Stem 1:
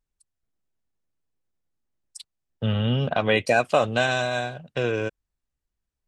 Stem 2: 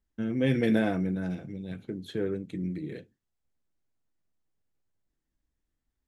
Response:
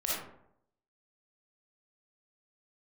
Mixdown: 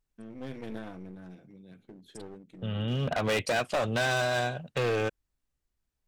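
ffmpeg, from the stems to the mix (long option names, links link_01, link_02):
-filter_complex "[0:a]alimiter=limit=-12dB:level=0:latency=1:release=354,volume=1dB[link_01];[1:a]highpass=140,aeval=exprs='clip(val(0),-1,0.0168)':channel_layout=same,volume=-12dB,asplit=2[link_02][link_03];[link_03]apad=whole_len=267945[link_04];[link_01][link_04]sidechaincompress=threshold=-54dB:ratio=20:attack=24:release=341[link_05];[link_05][link_02]amix=inputs=2:normalize=0,asoftclip=type=hard:threshold=-24dB"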